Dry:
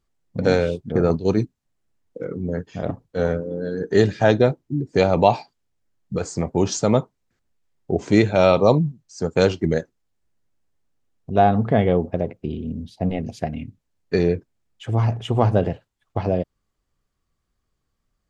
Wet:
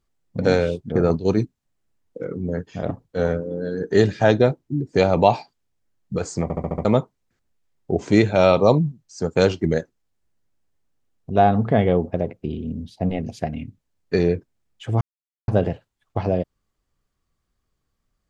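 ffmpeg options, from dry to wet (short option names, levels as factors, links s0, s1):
-filter_complex "[0:a]asplit=9[s0][s1][s2][s3][s4][s5][s6][s7][s8];[s0]atrim=end=6.502[s9];[s1]atrim=start=6.428:end=6.502[s10];[s2]atrim=start=6.428:end=6.502[s11];[s3]atrim=start=6.428:end=6.502[s12];[s4]atrim=start=6.428:end=6.502[s13];[s5]atrim=start=6.428:end=6.502[s14];[s6]atrim=start=6.848:end=15.01,asetpts=PTS-STARTPTS,afade=t=out:st=8.158:d=0.004:c=hsin[s15];[s7]atrim=start=15.01:end=15.48,asetpts=PTS-STARTPTS,volume=0[s16];[s8]atrim=start=15.48,asetpts=PTS-STARTPTS,afade=t=in:d=0.004:c=hsin[s17];[s9][s10]acrossfade=d=0.004:c1=hsin:c2=hsin[s18];[s18][s11]acrossfade=d=0.004:c1=hsin:c2=hsin[s19];[s19][s12]acrossfade=d=0.004:c1=hsin:c2=hsin[s20];[s20][s13]acrossfade=d=0.004:c1=hsin:c2=hsin[s21];[s21][s14]acrossfade=d=0.004:c1=hsin:c2=hsin[s22];[s15][s16][s17]concat=n=3:v=0:a=1[s23];[s22][s23]acrossfade=d=0.004:c1=hsin:c2=hsin"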